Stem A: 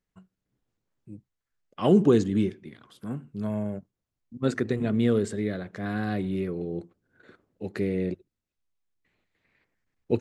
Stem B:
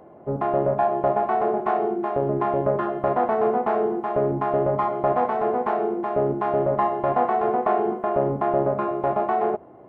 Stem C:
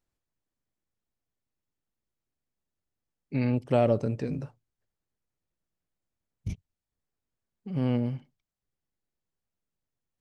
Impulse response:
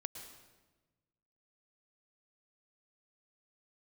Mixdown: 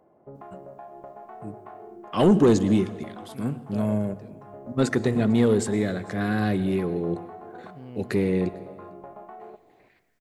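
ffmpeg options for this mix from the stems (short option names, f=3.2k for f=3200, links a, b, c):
-filter_complex "[0:a]highshelf=f=7.1k:g=8,asoftclip=type=tanh:threshold=-16dB,adelay=350,volume=2.5dB,asplit=3[a][b][c];[b]volume=-6dB[d];[c]volume=-23.5dB[e];[1:a]acompressor=threshold=-27dB:ratio=6,volume=-15dB,asplit=2[f][g];[g]volume=-8.5dB[h];[2:a]volume=-15.5dB,asplit=2[i][j];[j]apad=whole_len=435902[k];[f][k]sidechaincompress=threshold=-56dB:ratio=8:attack=16:release=154[l];[3:a]atrim=start_sample=2205[m];[d][h]amix=inputs=2:normalize=0[n];[n][m]afir=irnorm=-1:irlink=0[o];[e]aecho=0:1:451:1[p];[a][l][i][o][p]amix=inputs=5:normalize=0"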